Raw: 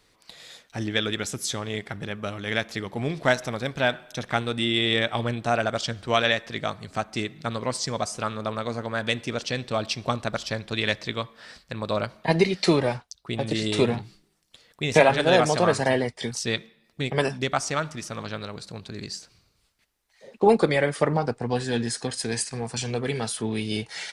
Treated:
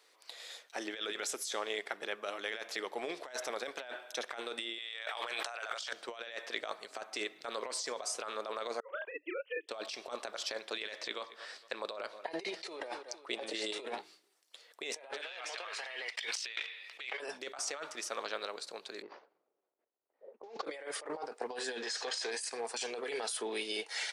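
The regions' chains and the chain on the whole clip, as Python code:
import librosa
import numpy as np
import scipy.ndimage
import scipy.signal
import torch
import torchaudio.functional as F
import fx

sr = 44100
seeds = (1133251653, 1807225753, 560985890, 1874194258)

y = fx.chain(x, sr, fx.highpass(hz=920.0, slope=12),
    fx.env_flatten(amount_pct=70), at=(4.78, 5.93))
y = fx.chain(y, sr, fx.sine_speech(),
    fx.doubler(ms=33.0, db=-2),
    fx.upward_expand(threshold_db=-37.0, expansion=2.5), at=(8.8, 9.69))
y = fx.chain(y, sr, fx.lowpass(hz=11000.0, slope=12),
    fx.echo_feedback(ms=227, feedback_pct=34, wet_db=-22.0), at=(10.96, 13.76))
y = fx.chain(y, sr, fx.leveller(passes=2),
    fx.bandpass_q(hz=2600.0, q=1.8),
    fx.env_flatten(amount_pct=50), at=(15.21, 17.2))
y = fx.chain(y, sr, fx.cvsd(bps=32000),
    fx.env_lowpass(base_hz=480.0, full_db=-19.5), at=(19.02, 20.65))
y = fx.chain(y, sr, fx.zero_step(step_db=-36.5),
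    fx.lowpass(hz=6600.0, slope=24),
    fx.peak_eq(hz=200.0, db=-11.0, octaves=1.3), at=(21.82, 22.31))
y = scipy.signal.sosfilt(scipy.signal.butter(4, 400.0, 'highpass', fs=sr, output='sos'), y)
y = fx.over_compress(y, sr, threshold_db=-33.0, ratio=-1.0)
y = y * 10.0 ** (-7.5 / 20.0)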